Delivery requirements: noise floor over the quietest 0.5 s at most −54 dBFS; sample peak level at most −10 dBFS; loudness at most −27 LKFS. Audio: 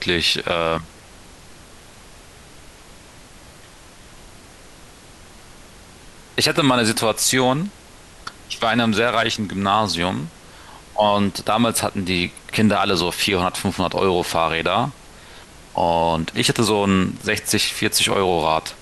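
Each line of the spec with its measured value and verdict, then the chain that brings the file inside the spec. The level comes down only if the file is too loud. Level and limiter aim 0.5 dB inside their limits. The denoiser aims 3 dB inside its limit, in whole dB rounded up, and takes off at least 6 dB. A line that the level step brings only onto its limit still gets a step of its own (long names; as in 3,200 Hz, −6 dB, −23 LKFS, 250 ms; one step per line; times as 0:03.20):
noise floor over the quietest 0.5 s −44 dBFS: out of spec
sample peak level −5.5 dBFS: out of spec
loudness −19.5 LKFS: out of spec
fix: broadband denoise 6 dB, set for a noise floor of −44 dBFS
level −8 dB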